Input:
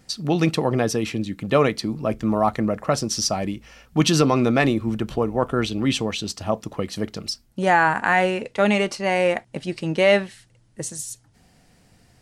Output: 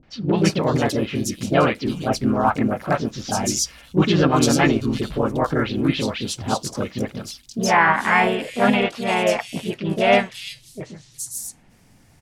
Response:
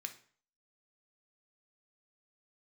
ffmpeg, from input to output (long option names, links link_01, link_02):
-filter_complex "[0:a]asplit=4[link_01][link_02][link_03][link_04];[link_02]asetrate=29433,aresample=44100,atempo=1.49831,volume=-15dB[link_05];[link_03]asetrate=52444,aresample=44100,atempo=0.840896,volume=-2dB[link_06];[link_04]asetrate=55563,aresample=44100,atempo=0.793701,volume=-9dB[link_07];[link_01][link_05][link_06][link_07]amix=inputs=4:normalize=0,acrossover=split=530|3800[link_08][link_09][link_10];[link_09]adelay=30[link_11];[link_10]adelay=370[link_12];[link_08][link_11][link_12]amix=inputs=3:normalize=0"